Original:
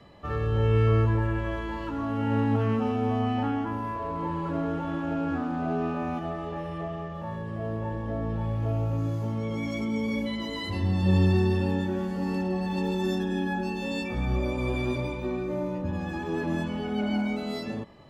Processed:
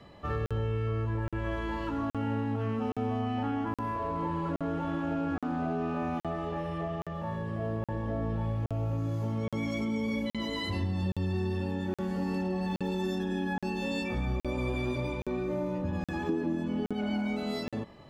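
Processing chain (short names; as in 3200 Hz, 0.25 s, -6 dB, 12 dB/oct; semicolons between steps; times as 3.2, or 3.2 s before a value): 16.29–16.93 bell 290 Hz +11.5 dB 1.3 oct; compressor 12:1, threshold -27 dBFS, peak gain reduction 12.5 dB; crackling interface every 0.82 s, samples 2048, zero, from 0.46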